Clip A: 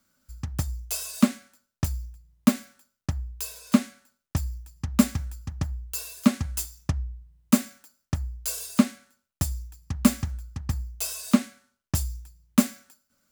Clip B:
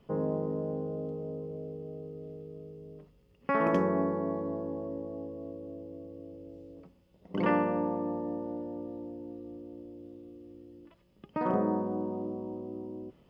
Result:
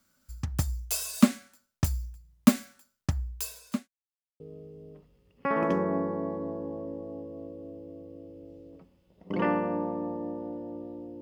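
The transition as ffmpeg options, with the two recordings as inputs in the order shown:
ffmpeg -i cue0.wav -i cue1.wav -filter_complex "[0:a]apad=whole_dur=11.21,atrim=end=11.21,asplit=2[link_01][link_02];[link_01]atrim=end=3.88,asetpts=PTS-STARTPTS,afade=type=out:start_time=3.36:duration=0.52[link_03];[link_02]atrim=start=3.88:end=4.4,asetpts=PTS-STARTPTS,volume=0[link_04];[1:a]atrim=start=2.44:end=9.25,asetpts=PTS-STARTPTS,afade=type=in:duration=0.004:curve=hsin[link_05];[link_03][link_04][link_05]concat=n=3:v=0:a=1" out.wav

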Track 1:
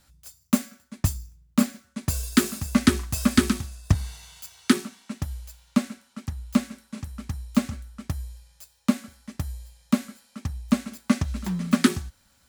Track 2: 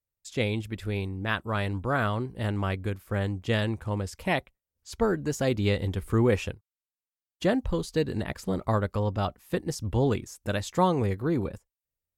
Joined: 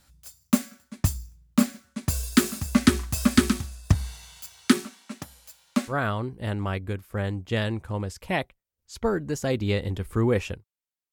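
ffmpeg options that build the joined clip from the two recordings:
ffmpeg -i cue0.wav -i cue1.wav -filter_complex "[0:a]asettb=1/sr,asplit=3[link_01][link_02][link_03];[link_01]atrim=end=4.854[link_04];[link_02]atrim=start=4.85:end=5.94,asetpts=PTS-STARTPTS,afade=type=in:duration=0.004:curve=qsin,afade=type=out:start_time=1.086:duration=0.004:curve=qsin,highpass=240[link_05];[link_03]atrim=start=5.936[link_06];[link_04][link_05]acrossfade=duration=0.004:curve1=hsin:curve2=qsin[link_07];[link_07][link_06]acrossfade=duration=0.004:curve1=qsin:curve2=hsin,apad=whole_dur=11.12,atrim=end=11.12,atrim=end=5.94,asetpts=PTS-STARTPTS[link_08];[1:a]atrim=start=1.83:end=7.09,asetpts=PTS-STARTPTS[link_09];[link_08][link_09]acrossfade=duration=0.08:curve1=tri:curve2=tri" out.wav

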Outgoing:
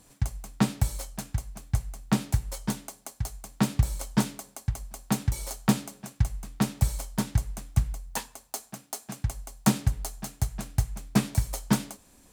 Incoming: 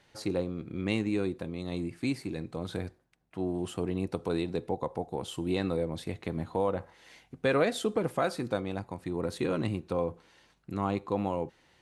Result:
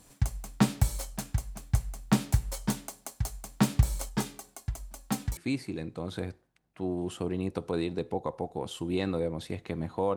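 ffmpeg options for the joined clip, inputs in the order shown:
ffmpeg -i cue0.wav -i cue1.wav -filter_complex "[0:a]asettb=1/sr,asplit=3[link_01][link_02][link_03];[link_01]atrim=end=4.094[link_04];[link_02]atrim=start=4.09:end=5.37,asetpts=PTS-STARTPTS,afade=type=in:duration=0.004:curve=qsin,afade=type=out:start_time=1.276:duration=0.004:curve=qsin,flanger=delay=2.4:depth=3.7:regen=43:speed=0.2:shape=sinusoidal[link_05];[link_03]atrim=start=5.366[link_06];[link_04][link_05]acrossfade=duration=0.004:curve1=hsin:curve2=qsin[link_07];[link_07][link_06]acrossfade=duration=0.004:curve1=qsin:curve2=hsin,apad=whole_dur=10.16,atrim=end=10.16,atrim=end=5.372[link_08];[1:a]atrim=start=1.938:end=6.73[link_09];[link_08][link_09]acrossfade=duration=0.004:curve1=hsin:curve2=hsin" out.wav

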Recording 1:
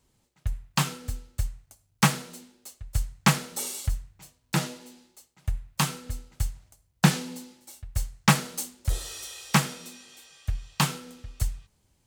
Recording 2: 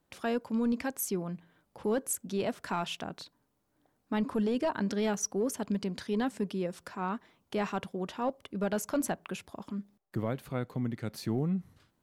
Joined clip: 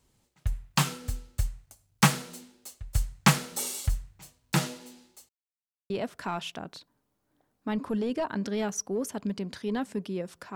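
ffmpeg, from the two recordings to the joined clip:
ffmpeg -i cue0.wav -i cue1.wav -filter_complex "[0:a]apad=whole_dur=10.55,atrim=end=10.55,asplit=2[link_01][link_02];[link_01]atrim=end=5.29,asetpts=PTS-STARTPTS,afade=type=out:start_time=5.286:duration=0.004:curve=hsin[link_03];[link_02]atrim=start=5.29:end=5.9,asetpts=PTS-STARTPTS,volume=0[link_04];[1:a]atrim=start=2.35:end=7,asetpts=PTS-STARTPTS,afade=type=in:duration=0.004:curve=hsin[link_05];[link_03][link_04][link_05]concat=n=3:v=0:a=1" out.wav

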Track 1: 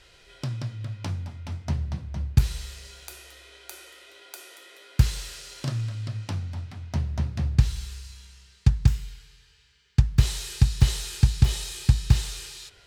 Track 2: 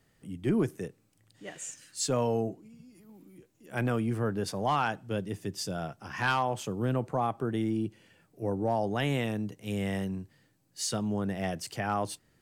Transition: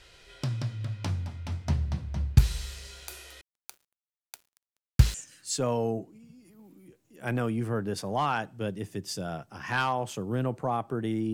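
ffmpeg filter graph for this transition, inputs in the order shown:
ffmpeg -i cue0.wav -i cue1.wav -filter_complex "[0:a]asettb=1/sr,asplit=3[link_01][link_02][link_03];[link_01]atrim=end=3.414[link_04];[link_02]atrim=start=3.41:end=5.14,asetpts=PTS-STARTPTS,afade=type=in:duration=0.004:curve=qsin,afade=type=out:start_time=1.726:duration=0.004:curve=qsin,aeval=exprs='sgn(val(0))*max(abs(val(0))-0.0119,0)':channel_layout=same[link_05];[link_03]atrim=start=5.136[link_06];[link_04][link_05]acrossfade=duration=0.004:curve1=hsin:curve2=qsin[link_07];[link_07][link_06]acrossfade=duration=0.004:curve1=qsin:curve2=hsin,apad=whole_dur=11.33,atrim=end=11.33,atrim=end=5.142[link_08];[1:a]atrim=start=1.638:end=7.83[link_09];[link_08][link_09]acrossfade=duration=0.004:curve1=hsin:curve2=hsin" out.wav

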